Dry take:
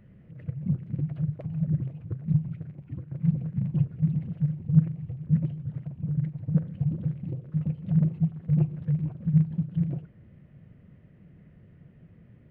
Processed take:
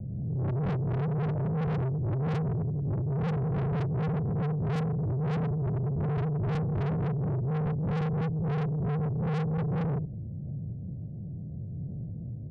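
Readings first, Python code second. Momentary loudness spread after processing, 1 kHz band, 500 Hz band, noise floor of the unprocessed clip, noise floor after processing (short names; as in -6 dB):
9 LU, n/a, +14.5 dB, -54 dBFS, -38 dBFS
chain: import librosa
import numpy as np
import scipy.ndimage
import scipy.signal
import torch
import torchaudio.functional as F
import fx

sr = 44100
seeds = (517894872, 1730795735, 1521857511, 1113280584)

y = fx.spec_swells(x, sr, rise_s=0.45)
y = scipy.signal.sosfilt(scipy.signal.butter(16, 800.0, 'lowpass', fs=sr, output='sos'), y)
y = fx.peak_eq(y, sr, hz=110.0, db=12.0, octaves=1.5)
y = fx.rider(y, sr, range_db=4, speed_s=2.0)
y = fx.tube_stage(y, sr, drive_db=31.0, bias=0.25)
y = fx.pre_swell(y, sr, db_per_s=22.0)
y = F.gain(torch.from_numpy(y), 3.5).numpy()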